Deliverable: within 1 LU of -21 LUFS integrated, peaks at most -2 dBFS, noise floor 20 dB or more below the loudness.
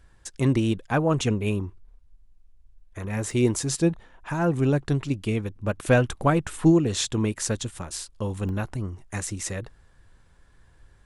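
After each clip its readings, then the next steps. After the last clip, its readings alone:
dropouts 2; longest dropout 1.2 ms; loudness -25.5 LUFS; peak level -7.5 dBFS; loudness target -21.0 LUFS
-> interpolate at 3.31/8.49 s, 1.2 ms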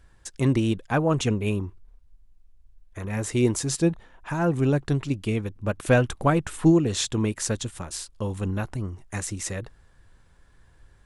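dropouts 0; loudness -25.5 LUFS; peak level -7.5 dBFS; loudness target -21.0 LUFS
-> trim +4.5 dB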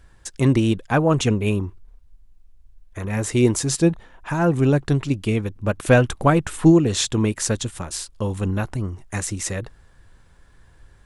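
loudness -21.0 LUFS; peak level -3.0 dBFS; noise floor -53 dBFS

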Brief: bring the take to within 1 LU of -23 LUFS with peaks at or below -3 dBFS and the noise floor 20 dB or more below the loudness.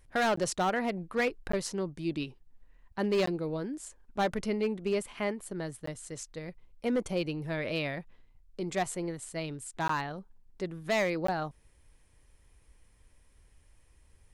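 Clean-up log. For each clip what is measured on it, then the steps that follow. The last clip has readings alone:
clipped samples 1.0%; clipping level -23.0 dBFS; dropouts 6; longest dropout 14 ms; loudness -33.0 LUFS; peak level -23.0 dBFS; loudness target -23.0 LUFS
-> clip repair -23 dBFS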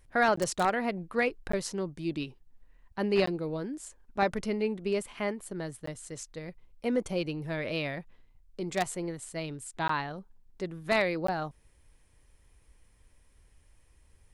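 clipped samples 0.0%; dropouts 6; longest dropout 14 ms
-> interpolate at 0.36/1.52/3.26/5.86/9.88/11.27 s, 14 ms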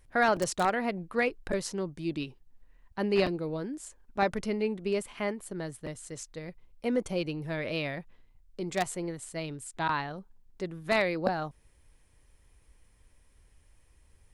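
dropouts 0; loudness -32.0 LUFS; peak level -10.5 dBFS; loudness target -23.0 LUFS
-> trim +9 dB; peak limiter -3 dBFS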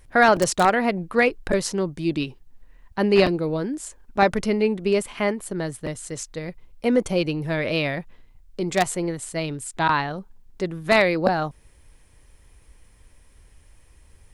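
loudness -23.0 LUFS; peak level -3.0 dBFS; noise floor -54 dBFS

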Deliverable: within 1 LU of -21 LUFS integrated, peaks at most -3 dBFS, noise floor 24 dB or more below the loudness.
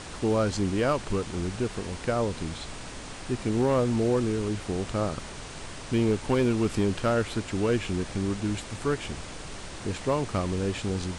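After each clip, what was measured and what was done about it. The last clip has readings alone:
clipped samples 0.4%; clipping level -17.0 dBFS; noise floor -40 dBFS; noise floor target -52 dBFS; loudness -28.0 LUFS; peak level -17.0 dBFS; loudness target -21.0 LUFS
-> clip repair -17 dBFS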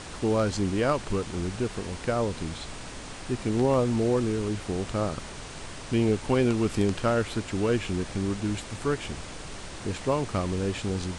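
clipped samples 0.0%; noise floor -40 dBFS; noise floor target -52 dBFS
-> noise print and reduce 12 dB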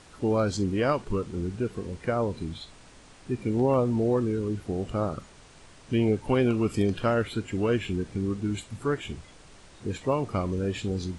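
noise floor -52 dBFS; loudness -28.0 LUFS; peak level -11.5 dBFS; loudness target -21.0 LUFS
-> trim +7 dB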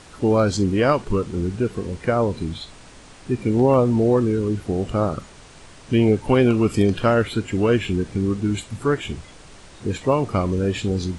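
loudness -21.0 LUFS; peak level -4.5 dBFS; noise floor -45 dBFS

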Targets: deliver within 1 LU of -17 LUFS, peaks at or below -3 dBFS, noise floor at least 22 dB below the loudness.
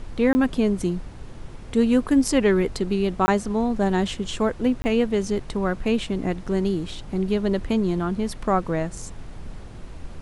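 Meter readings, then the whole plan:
dropouts 3; longest dropout 20 ms; noise floor -39 dBFS; noise floor target -46 dBFS; loudness -23.5 LUFS; peak level -7.5 dBFS; loudness target -17.0 LUFS
-> interpolate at 0.33/3.26/4.82 s, 20 ms; noise print and reduce 7 dB; trim +6.5 dB; peak limiter -3 dBFS

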